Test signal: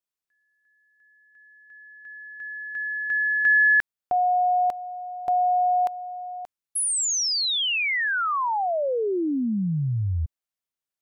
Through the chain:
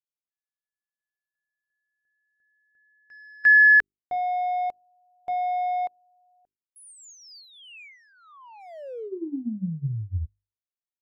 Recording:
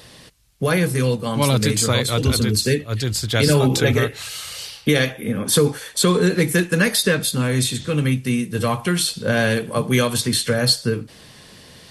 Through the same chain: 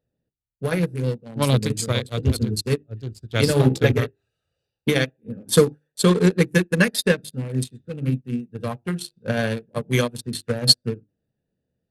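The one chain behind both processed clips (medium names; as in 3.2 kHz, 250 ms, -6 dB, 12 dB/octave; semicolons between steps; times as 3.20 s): local Wiener filter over 41 samples; hum notches 50/100/150/200/250/300/350/400 Hz; upward expansion 2.5:1, over -36 dBFS; trim +5 dB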